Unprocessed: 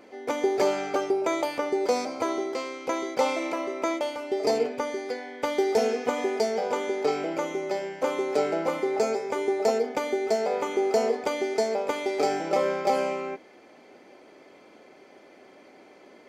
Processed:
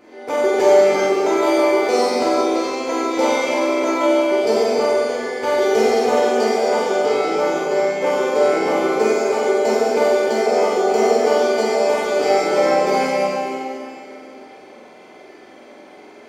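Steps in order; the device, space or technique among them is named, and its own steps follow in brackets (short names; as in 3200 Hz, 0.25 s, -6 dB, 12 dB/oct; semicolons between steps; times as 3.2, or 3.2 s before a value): tunnel (flutter echo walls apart 7.9 m, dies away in 0.63 s; reverb RT60 2.8 s, pre-delay 6 ms, DRR -7 dB)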